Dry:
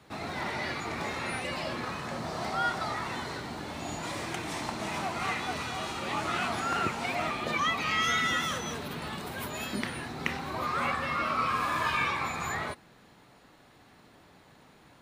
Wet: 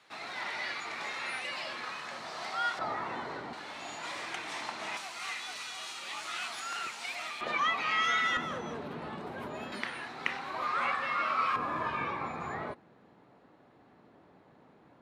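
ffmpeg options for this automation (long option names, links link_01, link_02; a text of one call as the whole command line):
ffmpeg -i in.wav -af "asetnsamples=nb_out_samples=441:pad=0,asendcmd='2.79 bandpass f 740;3.53 bandpass f 2200;4.97 bandpass f 5900;7.41 bandpass f 1400;8.37 bandpass f 480;9.72 bandpass f 1600;11.56 bandpass f 400',bandpass=frequency=2800:width_type=q:width=0.51:csg=0" out.wav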